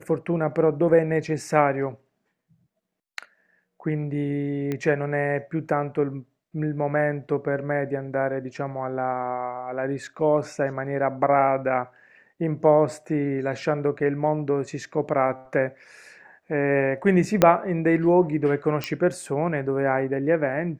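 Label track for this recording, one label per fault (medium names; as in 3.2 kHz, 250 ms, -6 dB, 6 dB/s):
4.720000	4.720000	pop -16 dBFS
17.420000	17.420000	pop -2 dBFS
18.840000	18.840000	pop -12 dBFS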